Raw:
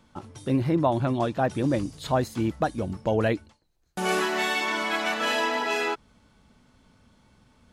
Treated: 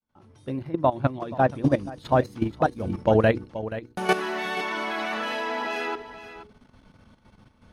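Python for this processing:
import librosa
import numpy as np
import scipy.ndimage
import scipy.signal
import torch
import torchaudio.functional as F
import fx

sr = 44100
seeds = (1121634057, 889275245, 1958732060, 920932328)

y = fx.fade_in_head(x, sr, length_s=1.11)
y = fx.vibrato(y, sr, rate_hz=10.0, depth_cents=11.0)
y = fx.hum_notches(y, sr, base_hz=60, count=8)
y = fx.level_steps(y, sr, step_db=12)
y = fx.high_shelf(y, sr, hz=3700.0, db=-8.0)
y = fx.notch(y, sr, hz=7400.0, q=5.5)
y = y + 10.0 ** (-13.0 / 20.0) * np.pad(y, (int(479 * sr / 1000.0), 0))[:len(y)]
y = fx.upward_expand(y, sr, threshold_db=-37.0, expansion=1.5, at=(0.59, 2.8))
y = F.gain(torch.from_numpy(y), 7.5).numpy()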